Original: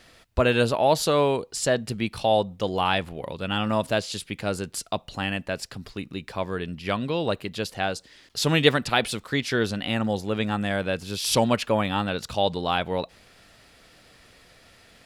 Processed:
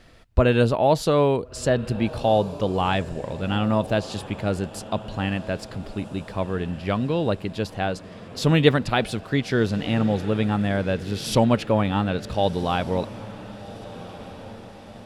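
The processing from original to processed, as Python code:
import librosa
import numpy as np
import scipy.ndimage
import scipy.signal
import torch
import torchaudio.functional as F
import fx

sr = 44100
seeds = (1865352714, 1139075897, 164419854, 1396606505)

p1 = fx.tilt_eq(x, sr, slope=-2.0)
y = p1 + fx.echo_diffused(p1, sr, ms=1435, feedback_pct=53, wet_db=-16.0, dry=0)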